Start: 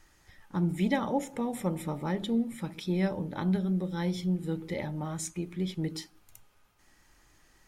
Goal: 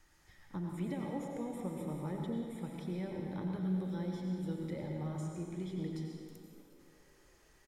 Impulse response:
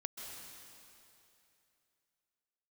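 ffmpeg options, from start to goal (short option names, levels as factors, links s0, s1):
-filter_complex "[0:a]acrossover=split=540|1200[s0][s1][s2];[s0]acompressor=threshold=0.0251:ratio=4[s3];[s1]acompressor=threshold=0.00447:ratio=4[s4];[s2]acompressor=threshold=0.002:ratio=4[s5];[s3][s4][s5]amix=inputs=3:normalize=0,asplit=6[s6][s7][s8][s9][s10][s11];[s7]adelay=370,afreqshift=51,volume=0.106[s12];[s8]adelay=740,afreqshift=102,volume=0.0596[s13];[s9]adelay=1110,afreqshift=153,volume=0.0331[s14];[s10]adelay=1480,afreqshift=204,volume=0.0186[s15];[s11]adelay=1850,afreqshift=255,volume=0.0105[s16];[s6][s12][s13][s14][s15][s16]amix=inputs=6:normalize=0[s17];[1:a]atrim=start_sample=2205,asetrate=66150,aresample=44100[s18];[s17][s18]afir=irnorm=-1:irlink=0,volume=1.19"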